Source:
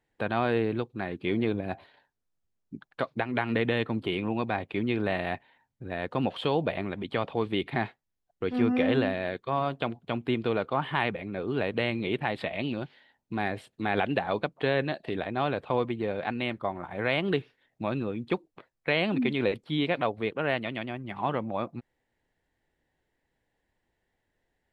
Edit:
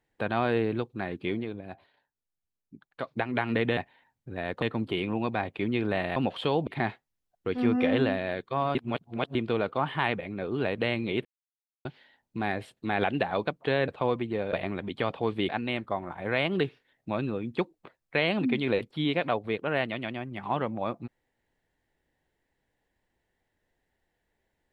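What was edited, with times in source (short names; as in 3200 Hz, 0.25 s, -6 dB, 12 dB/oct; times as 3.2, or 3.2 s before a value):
1.22–3.18 dip -8.5 dB, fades 0.24 s
5.31–6.16 move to 3.77
6.67–7.63 move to 16.22
9.71–10.31 reverse
12.21–12.81 mute
14.84–15.57 cut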